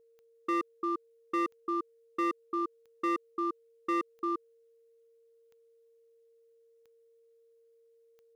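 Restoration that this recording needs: clip repair -25.5 dBFS; de-click; notch 460 Hz, Q 30; inverse comb 0.346 s -4.5 dB

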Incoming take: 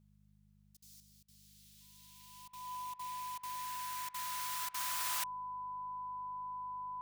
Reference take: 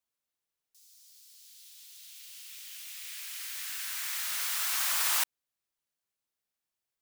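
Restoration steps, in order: de-hum 50.9 Hz, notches 4; notch 1000 Hz, Q 30; interpolate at 0.77/1.23/2.48/2.94/3.38/4.09/4.69, 51 ms; gain correction +9.5 dB, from 1

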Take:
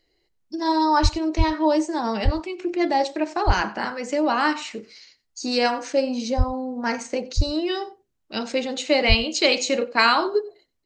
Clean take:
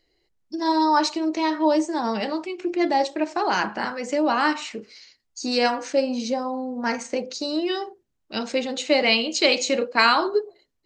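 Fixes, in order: de-plosive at 1.02/1.37/2.24/3.46/6.37/7.36/9.08; inverse comb 93 ms -21.5 dB

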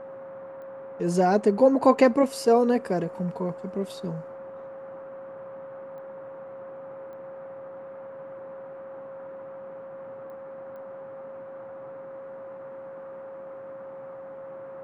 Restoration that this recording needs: de-click; notch 540 Hz, Q 30; noise print and reduce 30 dB

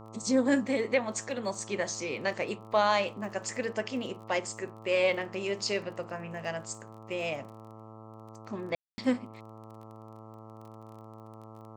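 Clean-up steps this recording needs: de-click; de-hum 110 Hz, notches 12; room tone fill 8.75–8.98

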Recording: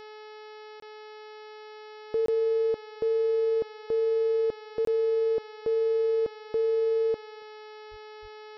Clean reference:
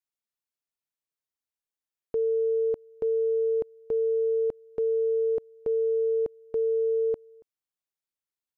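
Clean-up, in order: de-hum 428.2 Hz, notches 13; 7.9–8.02 HPF 140 Hz 24 dB/oct; 8.21–8.33 HPF 140 Hz 24 dB/oct; interpolate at 0.8/2.26/4.85, 23 ms

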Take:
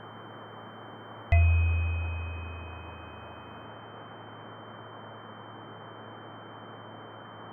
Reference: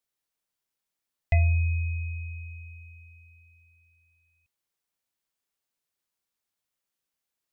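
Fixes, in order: de-hum 109.5 Hz, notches 4; notch 3100 Hz, Q 30; noise print and reduce 30 dB; gain 0 dB, from 3.65 s +5.5 dB

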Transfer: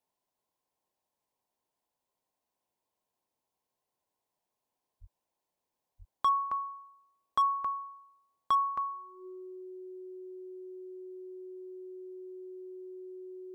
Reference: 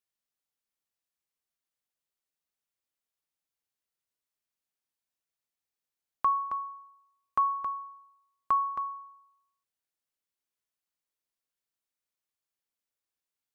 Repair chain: clip repair -21.5 dBFS; notch 370 Hz, Q 30; 5–5.12 HPF 140 Hz 24 dB/oct; 5.98–6.1 HPF 140 Hz 24 dB/oct; expander -80 dBFS, range -21 dB

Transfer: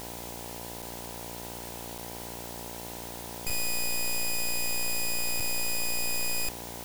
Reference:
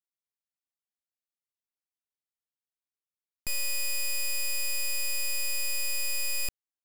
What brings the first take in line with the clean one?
de-hum 58.6 Hz, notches 17; interpolate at 0.82/1.98/3.5/5.4, 4.6 ms; noise print and reduce 30 dB

